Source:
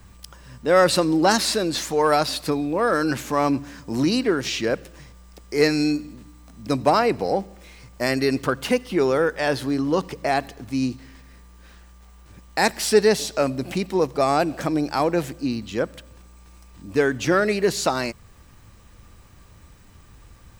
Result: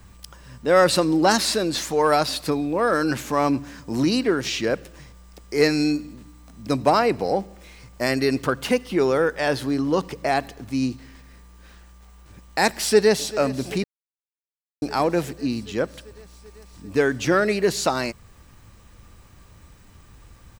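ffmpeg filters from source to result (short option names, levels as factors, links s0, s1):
-filter_complex "[0:a]asplit=2[s0][s1];[s1]afade=t=in:st=12.67:d=0.01,afade=t=out:st=13.26:d=0.01,aecho=0:1:390|780|1170|1560|1950|2340|2730|3120|3510|3900|4290|4680:0.141254|0.113003|0.0904024|0.0723219|0.0578575|0.046286|0.0370288|0.0296231|0.0236984|0.0189588|0.015167|0.0121336[s2];[s0][s2]amix=inputs=2:normalize=0,asplit=3[s3][s4][s5];[s3]atrim=end=13.84,asetpts=PTS-STARTPTS,afade=t=out:st=13.836:d=0.004:c=hsin[s6];[s4]atrim=start=13.84:end=14.82,asetpts=PTS-STARTPTS,volume=0[s7];[s5]atrim=start=14.82,asetpts=PTS-STARTPTS,afade=t=in:d=0.004:c=hsin[s8];[s6][s7][s8]concat=n=3:v=0:a=1"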